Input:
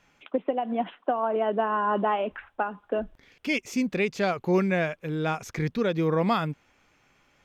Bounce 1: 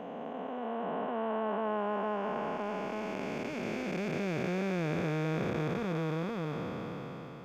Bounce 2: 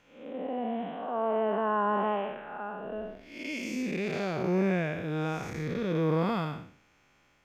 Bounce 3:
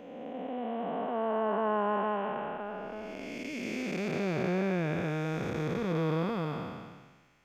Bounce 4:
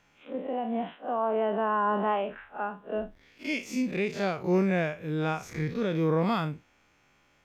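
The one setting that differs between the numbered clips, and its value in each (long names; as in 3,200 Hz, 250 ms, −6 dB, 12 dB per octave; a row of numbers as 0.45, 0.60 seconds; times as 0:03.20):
spectrum smeared in time, width: 1,800, 262, 720, 93 milliseconds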